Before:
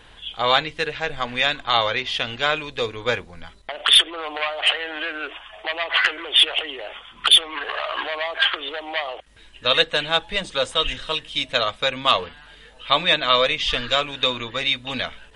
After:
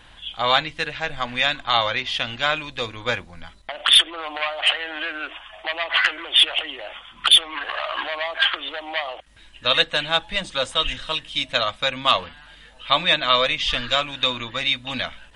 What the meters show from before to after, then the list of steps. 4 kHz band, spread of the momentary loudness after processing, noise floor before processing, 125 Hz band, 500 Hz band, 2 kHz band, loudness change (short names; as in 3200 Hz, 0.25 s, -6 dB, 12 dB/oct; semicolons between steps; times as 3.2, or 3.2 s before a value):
0.0 dB, 14 LU, -48 dBFS, 0.0 dB, -2.5 dB, 0.0 dB, 0.0 dB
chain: bell 430 Hz -12.5 dB 0.28 oct